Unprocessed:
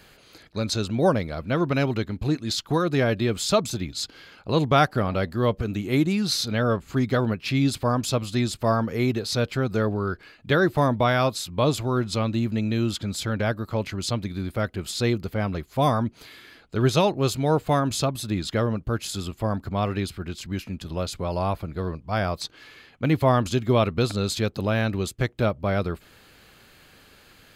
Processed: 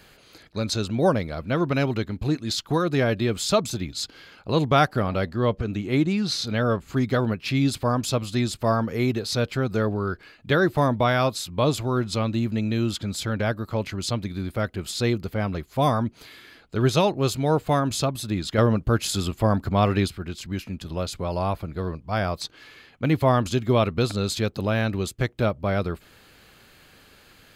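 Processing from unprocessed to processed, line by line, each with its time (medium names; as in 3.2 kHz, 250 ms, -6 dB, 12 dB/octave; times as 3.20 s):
5.29–6.45 s: distance through air 53 m
18.58–20.08 s: gain +5 dB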